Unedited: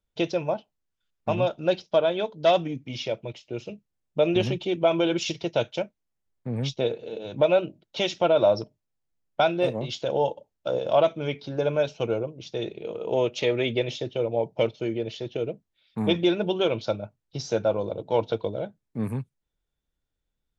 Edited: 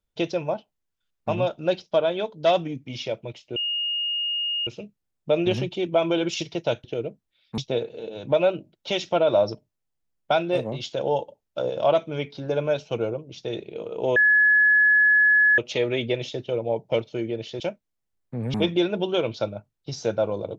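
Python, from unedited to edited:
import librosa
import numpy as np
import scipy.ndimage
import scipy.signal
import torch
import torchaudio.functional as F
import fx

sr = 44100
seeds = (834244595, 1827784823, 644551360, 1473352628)

y = fx.edit(x, sr, fx.insert_tone(at_s=3.56, length_s=1.11, hz=2850.0, db=-23.5),
    fx.swap(start_s=5.73, length_s=0.94, other_s=15.27, other_length_s=0.74),
    fx.insert_tone(at_s=13.25, length_s=1.42, hz=1700.0, db=-14.0), tone=tone)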